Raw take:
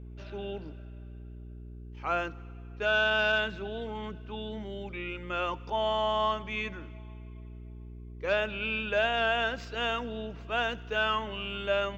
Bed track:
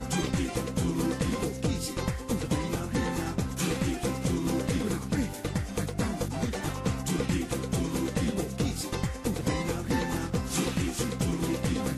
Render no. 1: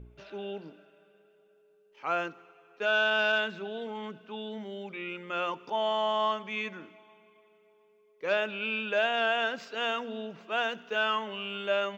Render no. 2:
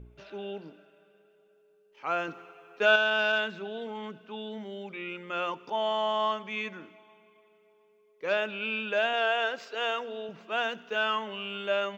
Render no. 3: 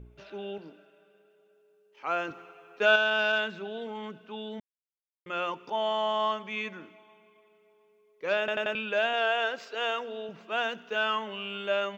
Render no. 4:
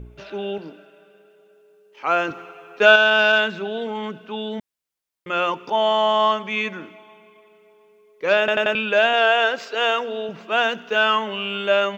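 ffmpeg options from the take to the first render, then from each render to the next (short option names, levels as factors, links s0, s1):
-af "bandreject=f=60:t=h:w=4,bandreject=f=120:t=h:w=4,bandreject=f=180:t=h:w=4,bandreject=f=240:t=h:w=4,bandreject=f=300:t=h:w=4,bandreject=f=360:t=h:w=4"
-filter_complex "[0:a]asettb=1/sr,asplit=3[s0][s1][s2];[s0]atrim=end=2.284[s3];[s1]atrim=start=2.28:end=2.96,asetpts=PTS-STARTPTS,afade=t=in:d=0.004:c=qsin,afade=t=out:st=0.676:d=0.004:c=qsin,acontrast=51[s4];[s2]atrim=start=2.956[s5];[s3][s4]acrossfade=d=0.004:c1=hsin:c2=qsin[s6];[s6][s5]acrossfade=d=0.004:c1=qsin:c2=hsin,asettb=1/sr,asplit=3[s7][s8][s9];[s7]atrim=end=9.134[s10];[s8]atrim=start=9.13:end=10.29,asetpts=PTS-STARTPTS,afade=t=in:d=0.004:c=qsin,afade=t=out:st=1.156:d=0.004:c=qsin,lowshelf=f=290:t=q:w=1.5:g=-7[s11];[s9]atrim=start=10.286[s12];[s10][s11]acrossfade=d=0.004:c1=hsin:c2=qsin[s13];[s13][s12]acrossfade=d=0.004:c1=qsin:c2=hsin"
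-filter_complex "[0:a]asettb=1/sr,asplit=3[s0][s1][s2];[s0]atrim=end=0.584[s3];[s1]atrim=start=0.58:end=2.31,asetpts=PTS-STARTPTS,afade=t=in:d=0.004:c=qsin,afade=t=out:st=1.726:d=0.004:c=qsin,highpass=170[s4];[s2]atrim=start=2.306[s5];[s3][s4]acrossfade=d=0.004:c1=hsin:c2=qsin[s6];[s6][s5]acrossfade=d=0.004:c1=qsin:c2=hsin,asplit=7[s7][s8][s9][s10][s11][s12][s13];[s7]atrim=end=4.6,asetpts=PTS-STARTPTS,afade=t=out:st=4.596:d=0.004:c=hsin[s14];[s8]atrim=start=4.6:end=5.26,asetpts=PTS-STARTPTS,volume=0[s15];[s9]atrim=start=5.26:end=8.482,asetpts=PTS-STARTPTS,afade=t=in:d=0.004:c=hsin[s16];[s10]atrim=start=8.388:end=8.482[s17];[s11]atrim=start=8.388:end=8.482[s18];[s12]atrim=start=8.388:end=8.482[s19];[s13]atrim=start=8.748[s20];[s14][s15][s16]concat=n=3:v=0:a=1[s21];[s21][s17]acrossfade=d=0.004:c1=hsin:c2=hsin[s22];[s22][s18]acrossfade=d=0.004:c1=hsin:c2=hsin[s23];[s23][s19]acrossfade=d=0.004:c1=hsin:c2=hsin[s24];[s24][s20]acrossfade=d=0.004:c1=hsin:c2=hsin"
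-af "volume=3.16,alimiter=limit=0.891:level=0:latency=1"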